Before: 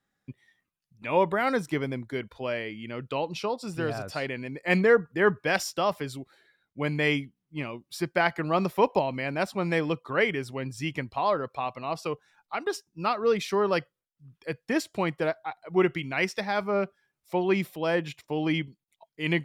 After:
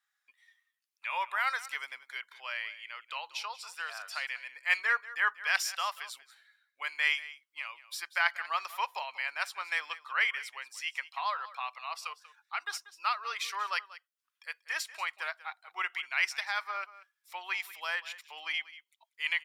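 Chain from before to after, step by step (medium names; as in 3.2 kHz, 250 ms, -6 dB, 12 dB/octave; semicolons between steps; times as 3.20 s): high-pass 1.1 kHz 24 dB/octave; on a send: delay 188 ms -17 dB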